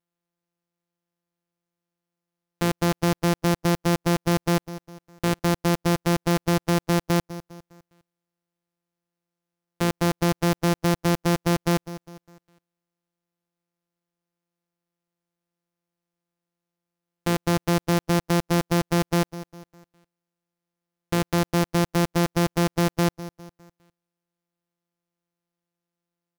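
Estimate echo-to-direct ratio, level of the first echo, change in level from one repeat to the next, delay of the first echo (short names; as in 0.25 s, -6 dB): -15.0 dB, -16.0 dB, -7.5 dB, 0.203 s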